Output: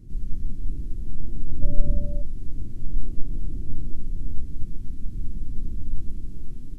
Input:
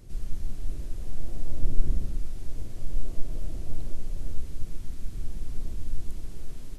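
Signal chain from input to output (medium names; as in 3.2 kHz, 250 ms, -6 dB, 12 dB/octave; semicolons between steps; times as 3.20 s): 1.61–2.21 s: whistle 580 Hz -29 dBFS; resonant low shelf 410 Hz +13.5 dB, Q 1.5; trim -10 dB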